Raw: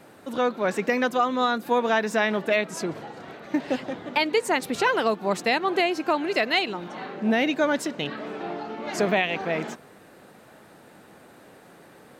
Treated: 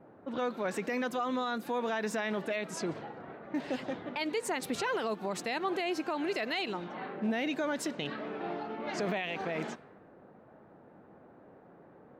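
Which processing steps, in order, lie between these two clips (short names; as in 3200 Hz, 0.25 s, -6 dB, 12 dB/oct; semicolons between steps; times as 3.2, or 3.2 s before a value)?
low-pass opened by the level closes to 860 Hz, open at -23.5 dBFS; limiter -20 dBFS, peak gain reduction 10.5 dB; gain -4.5 dB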